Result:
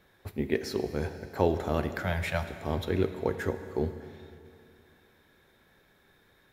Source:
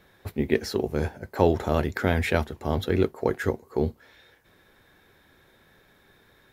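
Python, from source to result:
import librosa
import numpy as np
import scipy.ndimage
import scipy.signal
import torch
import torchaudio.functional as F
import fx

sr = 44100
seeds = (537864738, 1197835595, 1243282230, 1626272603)

y = fx.ellip_bandstop(x, sr, low_hz=190.0, high_hz=570.0, order=3, stop_db=40, at=(2.02, 2.43))
y = fx.rev_schroeder(y, sr, rt60_s=2.6, comb_ms=33, drr_db=9.5)
y = F.gain(torch.from_numpy(y), -5.0).numpy()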